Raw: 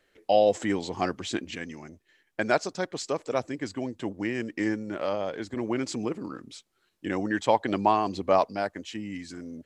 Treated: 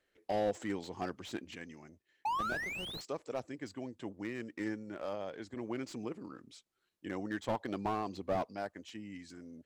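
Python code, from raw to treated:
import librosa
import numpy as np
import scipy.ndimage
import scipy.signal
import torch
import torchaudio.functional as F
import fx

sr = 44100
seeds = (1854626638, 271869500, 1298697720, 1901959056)

y = fx.spec_paint(x, sr, seeds[0], shape='rise', start_s=2.25, length_s=0.76, low_hz=830.0, high_hz=4400.0, level_db=-15.0)
y = fx.cheby_harmonics(y, sr, harmonics=(3, 7), levels_db=(-17, -40), full_scale_db=-4.0)
y = fx.slew_limit(y, sr, full_power_hz=40.0)
y = y * librosa.db_to_amplitude(-4.5)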